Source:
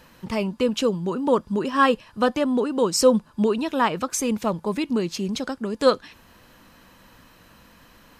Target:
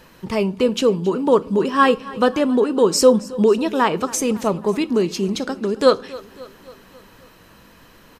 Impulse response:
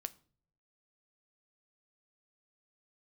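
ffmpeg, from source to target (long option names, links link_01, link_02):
-filter_complex "[0:a]equalizer=frequency=400:width_type=o:width=0.35:gain=7,aecho=1:1:272|544|816|1088|1360:0.106|0.0614|0.0356|0.0207|0.012,asplit=2[link_01][link_02];[1:a]atrim=start_sample=2205[link_03];[link_02][link_03]afir=irnorm=-1:irlink=0,volume=11.5dB[link_04];[link_01][link_04]amix=inputs=2:normalize=0,volume=-8.5dB"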